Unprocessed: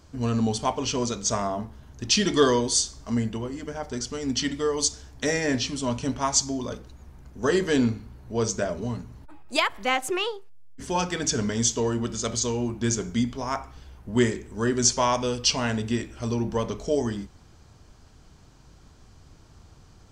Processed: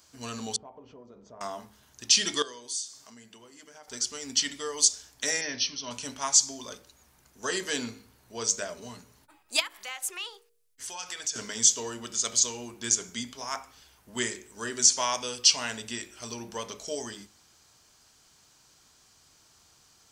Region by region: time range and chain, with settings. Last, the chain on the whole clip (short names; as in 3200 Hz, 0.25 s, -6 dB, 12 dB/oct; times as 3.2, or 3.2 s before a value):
0.56–1.41 Chebyshev low-pass 600 Hz + compressor 5:1, threshold -34 dBFS
2.42–3.88 HPF 120 Hz + compressor 2:1, threshold -46 dBFS
5.41–5.91 Chebyshev low-pass 6200 Hz, order 10 + bell 770 Hz -3.5 dB 2.7 oct
9.6–11.36 bell 230 Hz -14 dB 1.4 oct + compressor 3:1, threshold -33 dBFS
whole clip: tilt +4 dB/oct; de-hum 52.16 Hz, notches 11; maximiser 0 dB; gain -6 dB